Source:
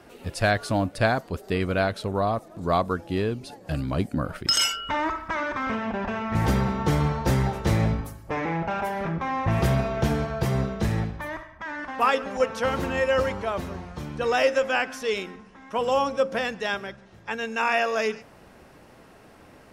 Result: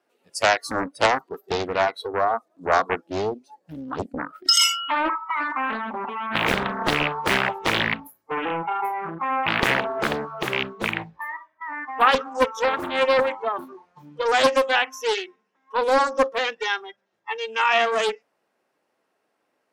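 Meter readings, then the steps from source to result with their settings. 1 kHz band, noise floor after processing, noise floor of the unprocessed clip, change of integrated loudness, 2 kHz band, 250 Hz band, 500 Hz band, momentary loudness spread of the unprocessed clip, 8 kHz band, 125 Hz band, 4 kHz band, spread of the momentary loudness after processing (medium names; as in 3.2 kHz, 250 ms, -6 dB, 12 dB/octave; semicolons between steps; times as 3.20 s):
+4.5 dB, -74 dBFS, -51 dBFS, +3.0 dB, +5.0 dB, -4.0 dB, +1.5 dB, 9 LU, +4.5 dB, -12.0 dB, +6.0 dB, 13 LU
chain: rattle on loud lows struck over -21 dBFS, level -13 dBFS; spectral noise reduction 25 dB; high-pass 350 Hz 12 dB/octave; loudspeaker Doppler distortion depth 0.92 ms; trim +5 dB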